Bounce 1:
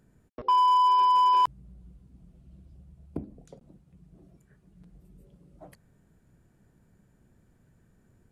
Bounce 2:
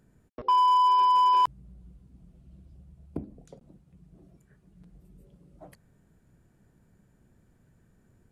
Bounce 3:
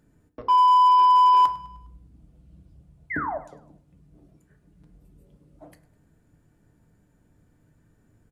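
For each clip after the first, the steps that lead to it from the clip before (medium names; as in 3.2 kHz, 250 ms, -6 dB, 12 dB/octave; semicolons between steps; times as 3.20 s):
no audible change
painted sound fall, 3.10–3.38 s, 550–2200 Hz -30 dBFS; feedback delay 102 ms, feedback 49%, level -19.5 dB; FDN reverb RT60 0.42 s, low-frequency decay 1.1×, high-frequency decay 0.5×, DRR 6 dB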